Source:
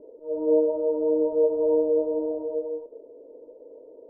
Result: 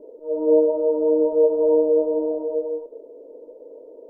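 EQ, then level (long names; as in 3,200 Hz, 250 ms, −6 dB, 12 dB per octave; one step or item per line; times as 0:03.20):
parametric band 90 Hz −12 dB 1.4 octaves
+5.0 dB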